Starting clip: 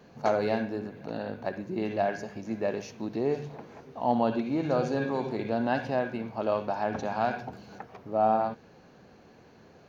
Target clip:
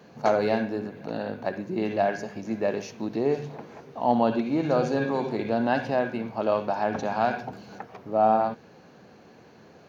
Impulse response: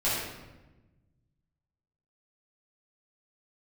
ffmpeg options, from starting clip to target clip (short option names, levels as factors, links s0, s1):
-af "highpass=99,bandreject=f=129.8:t=h:w=4,bandreject=f=259.6:t=h:w=4,bandreject=f=389.4:t=h:w=4,volume=1.5"